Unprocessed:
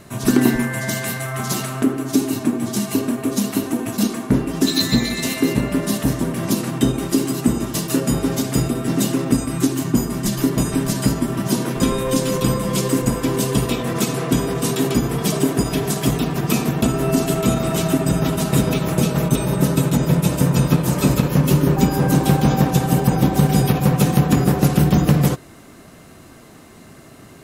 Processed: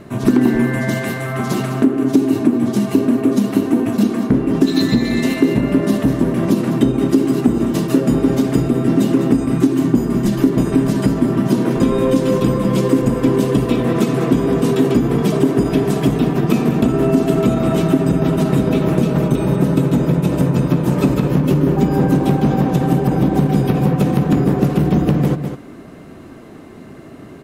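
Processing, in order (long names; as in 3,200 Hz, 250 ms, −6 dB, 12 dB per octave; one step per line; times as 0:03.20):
bass and treble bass +1 dB, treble −10 dB
single-tap delay 203 ms −12 dB
hard clipping −7.5 dBFS, distortion −20 dB
downward compressor, threshold −16 dBFS, peak gain reduction 6.5 dB
parametric band 320 Hz +7 dB 1.7 octaves
level +1.5 dB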